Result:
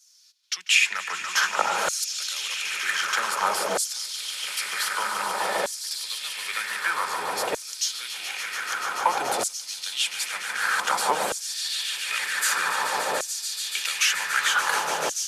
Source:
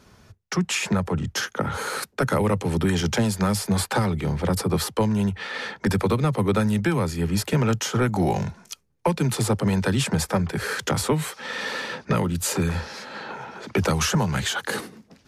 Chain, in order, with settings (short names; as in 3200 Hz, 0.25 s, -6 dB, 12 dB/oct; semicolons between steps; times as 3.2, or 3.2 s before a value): swelling echo 0.144 s, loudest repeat 8, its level -11 dB; vocal rider 2 s; LFO high-pass saw down 0.53 Hz 600–6500 Hz; gain -1 dB